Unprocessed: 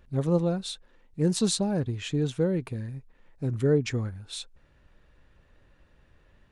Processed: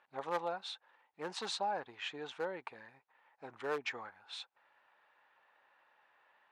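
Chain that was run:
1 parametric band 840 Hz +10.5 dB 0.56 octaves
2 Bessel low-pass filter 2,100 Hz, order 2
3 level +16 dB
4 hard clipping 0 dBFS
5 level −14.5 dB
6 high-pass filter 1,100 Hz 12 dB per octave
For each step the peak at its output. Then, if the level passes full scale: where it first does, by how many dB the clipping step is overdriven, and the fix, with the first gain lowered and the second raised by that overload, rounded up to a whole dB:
−11.5, −11.5, +4.5, 0.0, −14.5, −23.5 dBFS
step 3, 4.5 dB
step 3 +11 dB, step 5 −9.5 dB

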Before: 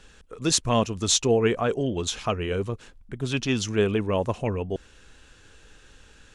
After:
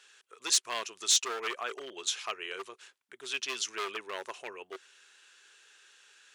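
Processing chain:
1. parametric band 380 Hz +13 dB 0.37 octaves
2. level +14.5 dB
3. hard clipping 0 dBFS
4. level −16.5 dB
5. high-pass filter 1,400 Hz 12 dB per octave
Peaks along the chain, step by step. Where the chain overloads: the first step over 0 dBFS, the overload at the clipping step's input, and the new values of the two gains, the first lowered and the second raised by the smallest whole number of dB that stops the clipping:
−6.0, +8.5, 0.0, −16.5, −13.5 dBFS
step 2, 8.5 dB
step 2 +5.5 dB, step 4 −7.5 dB

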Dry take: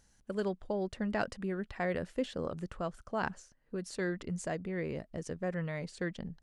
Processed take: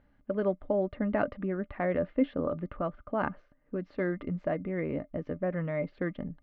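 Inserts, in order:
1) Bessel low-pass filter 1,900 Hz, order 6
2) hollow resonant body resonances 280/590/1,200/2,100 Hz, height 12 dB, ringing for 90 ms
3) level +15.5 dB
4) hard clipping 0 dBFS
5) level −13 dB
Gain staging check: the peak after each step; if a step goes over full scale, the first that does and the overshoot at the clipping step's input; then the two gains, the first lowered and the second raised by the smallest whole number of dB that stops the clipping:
−20.0, −18.0, −2.5, −2.5, −15.5 dBFS
no step passes full scale

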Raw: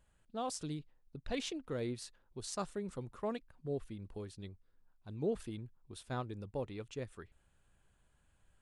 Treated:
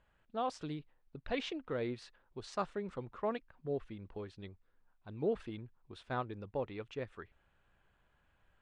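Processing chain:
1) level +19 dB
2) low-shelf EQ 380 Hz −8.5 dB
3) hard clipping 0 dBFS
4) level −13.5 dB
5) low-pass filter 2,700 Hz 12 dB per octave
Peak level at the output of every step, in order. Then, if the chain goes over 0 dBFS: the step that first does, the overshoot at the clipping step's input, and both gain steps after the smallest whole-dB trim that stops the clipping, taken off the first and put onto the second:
−5.0, −5.0, −5.0, −18.5, −22.0 dBFS
no step passes full scale

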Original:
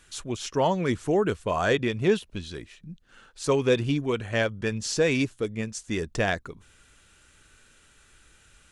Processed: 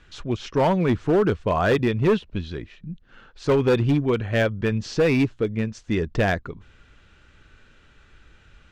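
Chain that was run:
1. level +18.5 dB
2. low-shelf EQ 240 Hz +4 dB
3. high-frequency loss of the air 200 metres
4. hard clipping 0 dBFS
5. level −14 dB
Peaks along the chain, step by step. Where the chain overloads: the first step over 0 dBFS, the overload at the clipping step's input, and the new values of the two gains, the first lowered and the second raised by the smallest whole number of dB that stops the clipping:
+8.5, +10.0, +9.0, 0.0, −14.0 dBFS
step 1, 9.0 dB
step 1 +9.5 dB, step 5 −5 dB

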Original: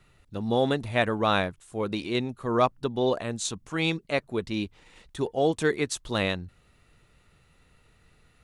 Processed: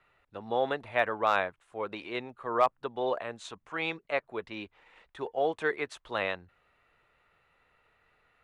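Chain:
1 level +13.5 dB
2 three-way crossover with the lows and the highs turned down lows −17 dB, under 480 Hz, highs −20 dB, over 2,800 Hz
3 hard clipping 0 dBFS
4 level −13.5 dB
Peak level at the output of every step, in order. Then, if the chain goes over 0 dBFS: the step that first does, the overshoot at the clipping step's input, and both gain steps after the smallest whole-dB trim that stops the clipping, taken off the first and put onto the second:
+4.5, +3.5, 0.0, −13.5 dBFS
step 1, 3.5 dB
step 1 +9.5 dB, step 4 −9.5 dB

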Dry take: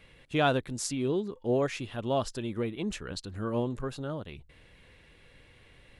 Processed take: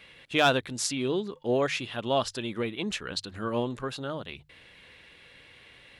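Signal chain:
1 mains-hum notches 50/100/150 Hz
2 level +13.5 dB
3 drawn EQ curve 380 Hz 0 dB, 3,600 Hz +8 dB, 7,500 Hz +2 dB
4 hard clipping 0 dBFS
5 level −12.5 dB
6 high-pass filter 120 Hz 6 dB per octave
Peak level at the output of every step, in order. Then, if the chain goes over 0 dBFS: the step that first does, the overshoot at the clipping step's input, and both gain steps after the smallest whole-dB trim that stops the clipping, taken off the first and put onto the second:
−12.5, +1.0, +6.0, 0.0, −12.5, −11.0 dBFS
step 2, 6.0 dB
step 2 +7.5 dB, step 5 −6.5 dB

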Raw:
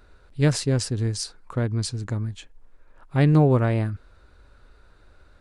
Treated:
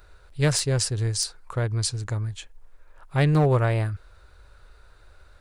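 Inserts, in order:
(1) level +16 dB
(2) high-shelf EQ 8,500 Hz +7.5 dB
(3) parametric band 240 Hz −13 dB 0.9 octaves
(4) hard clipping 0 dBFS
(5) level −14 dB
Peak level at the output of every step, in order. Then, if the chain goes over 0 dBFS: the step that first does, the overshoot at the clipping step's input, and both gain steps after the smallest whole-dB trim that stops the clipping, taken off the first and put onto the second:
+8.5, +8.5, +6.5, 0.0, −14.0 dBFS
step 1, 6.5 dB
step 1 +9 dB, step 5 −7 dB

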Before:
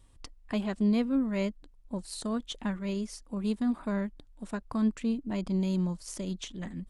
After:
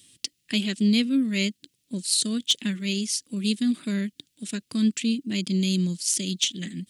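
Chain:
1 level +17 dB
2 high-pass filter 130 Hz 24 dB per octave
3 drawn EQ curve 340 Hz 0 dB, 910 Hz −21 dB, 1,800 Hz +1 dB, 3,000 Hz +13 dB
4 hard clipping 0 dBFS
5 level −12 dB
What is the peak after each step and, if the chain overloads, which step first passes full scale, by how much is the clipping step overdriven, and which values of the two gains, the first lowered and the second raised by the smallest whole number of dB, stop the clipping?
−1.0, −1.0, +3.5, 0.0, −12.0 dBFS
step 3, 3.5 dB
step 1 +13 dB, step 5 −8 dB

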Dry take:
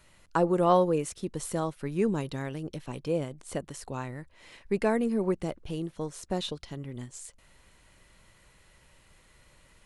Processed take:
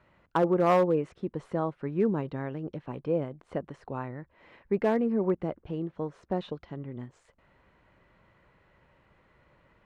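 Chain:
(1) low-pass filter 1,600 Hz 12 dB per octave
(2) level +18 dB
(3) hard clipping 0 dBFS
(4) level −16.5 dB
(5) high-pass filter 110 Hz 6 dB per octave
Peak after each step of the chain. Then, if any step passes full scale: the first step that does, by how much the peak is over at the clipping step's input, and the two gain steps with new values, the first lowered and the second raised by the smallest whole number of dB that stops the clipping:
−11.5, +6.5, 0.0, −16.5, −14.5 dBFS
step 2, 6.5 dB
step 2 +11 dB, step 4 −9.5 dB

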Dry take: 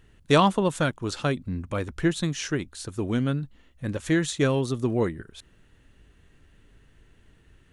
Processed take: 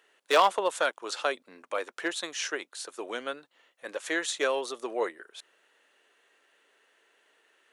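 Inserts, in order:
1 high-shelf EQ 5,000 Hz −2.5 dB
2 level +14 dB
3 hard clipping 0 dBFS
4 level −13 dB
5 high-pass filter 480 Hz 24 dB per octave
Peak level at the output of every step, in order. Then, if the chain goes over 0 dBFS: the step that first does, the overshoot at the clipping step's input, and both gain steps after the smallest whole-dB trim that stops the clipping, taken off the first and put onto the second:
−7.0, +7.0, 0.0, −13.0, −8.5 dBFS
step 2, 7.0 dB
step 2 +7 dB, step 4 −6 dB

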